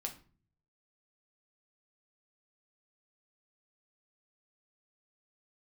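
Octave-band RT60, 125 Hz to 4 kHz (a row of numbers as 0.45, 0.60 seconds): 0.95, 0.65, 0.45, 0.40, 0.35, 0.30 seconds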